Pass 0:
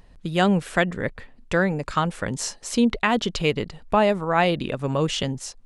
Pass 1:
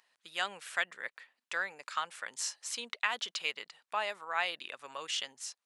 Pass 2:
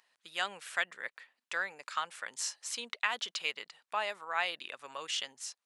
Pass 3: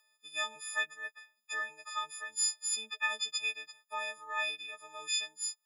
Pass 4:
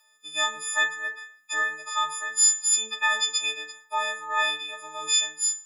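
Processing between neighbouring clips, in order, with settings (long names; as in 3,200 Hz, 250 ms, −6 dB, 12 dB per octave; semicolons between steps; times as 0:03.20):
high-pass filter 1,300 Hz 12 dB per octave; level −6.5 dB
no processing that can be heard
every partial snapped to a pitch grid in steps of 6 semitones; level −8 dB
feedback delay network reverb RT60 0.49 s, low-frequency decay 0.8×, high-frequency decay 0.75×, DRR −0.5 dB; level +5.5 dB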